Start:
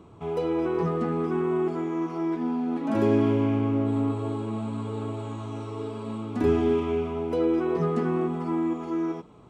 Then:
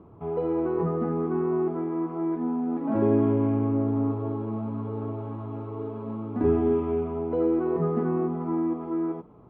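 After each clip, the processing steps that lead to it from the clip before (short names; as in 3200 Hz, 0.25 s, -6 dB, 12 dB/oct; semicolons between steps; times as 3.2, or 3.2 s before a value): LPF 1200 Hz 12 dB/oct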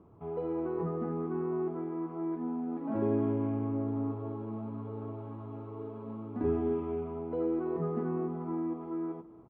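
outdoor echo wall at 51 m, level -20 dB; gain -7.5 dB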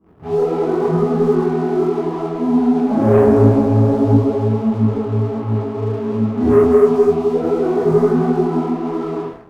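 reverb, pre-delay 3 ms, DRR -14.5 dB; sample leveller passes 2; detuned doubles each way 50 cents; gain -2 dB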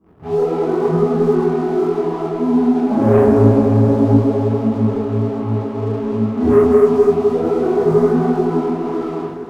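diffused feedback echo 0.51 s, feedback 64%, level -12.5 dB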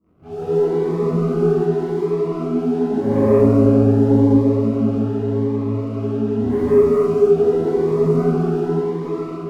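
non-linear reverb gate 0.24 s rising, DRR -6 dB; cascading phaser rising 0.86 Hz; gain -9 dB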